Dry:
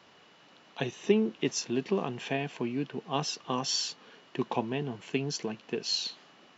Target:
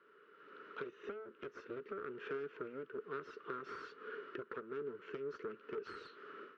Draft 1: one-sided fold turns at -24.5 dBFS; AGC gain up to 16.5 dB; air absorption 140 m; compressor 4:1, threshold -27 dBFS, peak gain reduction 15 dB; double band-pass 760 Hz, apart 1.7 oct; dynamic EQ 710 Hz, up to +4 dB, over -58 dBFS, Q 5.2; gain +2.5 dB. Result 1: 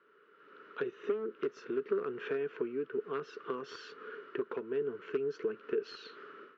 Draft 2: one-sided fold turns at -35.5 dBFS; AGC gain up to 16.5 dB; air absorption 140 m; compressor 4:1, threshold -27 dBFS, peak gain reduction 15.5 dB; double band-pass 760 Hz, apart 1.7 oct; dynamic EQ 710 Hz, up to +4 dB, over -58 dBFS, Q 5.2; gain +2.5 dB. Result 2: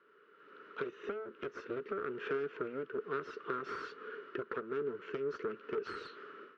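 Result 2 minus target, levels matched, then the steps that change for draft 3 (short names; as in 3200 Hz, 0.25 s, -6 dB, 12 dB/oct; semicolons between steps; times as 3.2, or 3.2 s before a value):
compressor: peak gain reduction -6 dB
change: compressor 4:1, threshold -35 dBFS, peak gain reduction 21.5 dB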